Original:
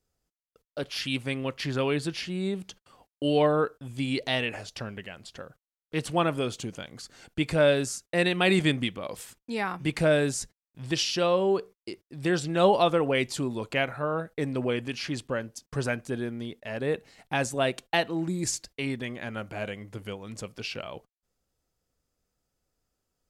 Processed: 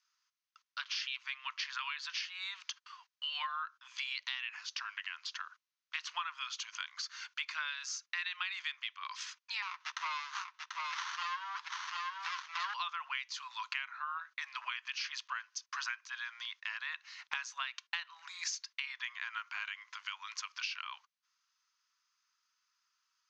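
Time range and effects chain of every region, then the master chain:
9.62–12.74 s: high-pass 400 Hz 24 dB/octave + delay 739 ms -8 dB + sliding maximum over 17 samples
whole clip: Chebyshev band-pass 1–6.4 kHz, order 5; compression 6:1, threshold -44 dBFS; trim +7.5 dB

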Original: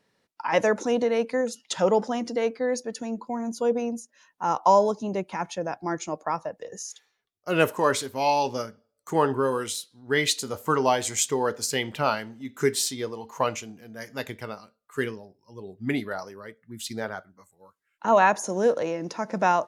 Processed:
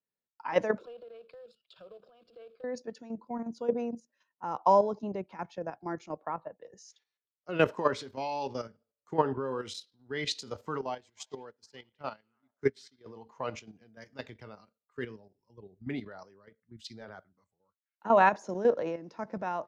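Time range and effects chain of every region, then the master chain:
0.78–2.64 s: compression 20:1, threshold -32 dBFS + short-mantissa float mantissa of 2-bit + static phaser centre 1.3 kHz, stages 8
6.17–6.63 s: Chebyshev low-pass 4.2 kHz, order 6 + band-stop 2.5 kHz, Q 21
10.81–13.06 s: repeats whose band climbs or falls 102 ms, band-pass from 3.5 kHz, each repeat -0.7 oct, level -11 dB + upward expansion 2.5:1, over -35 dBFS
whole clip: FFT filter 380 Hz 0 dB, 5.1 kHz -4 dB, 11 kHz -26 dB; level held to a coarse grid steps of 10 dB; three bands expanded up and down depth 40%; trim -3.5 dB

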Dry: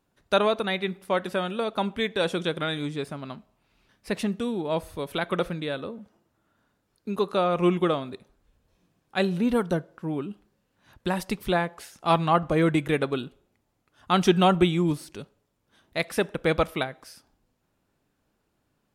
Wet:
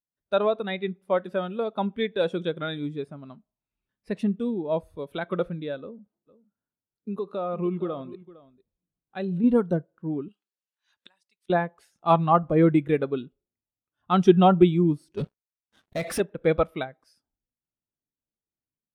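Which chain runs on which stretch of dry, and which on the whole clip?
5.81–9.44 s: compression 3:1, threshold -26 dBFS + delay 457 ms -12.5 dB
10.28–11.50 s: frequency weighting ITU-R 468 + inverted gate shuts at -26 dBFS, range -24 dB
15.17–16.20 s: compression 10:1, threshold -29 dBFS + waveshaping leveller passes 5
whole clip: level rider gain up to 4 dB; spectral contrast expander 1.5:1

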